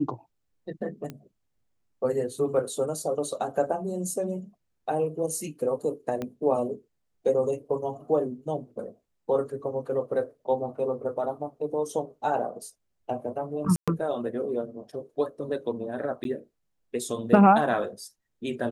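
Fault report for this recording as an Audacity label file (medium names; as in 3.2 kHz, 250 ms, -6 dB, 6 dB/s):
1.100000	1.100000	pop -23 dBFS
6.220000	6.220000	pop -19 dBFS
13.760000	13.880000	dropout 116 ms
16.240000	16.250000	dropout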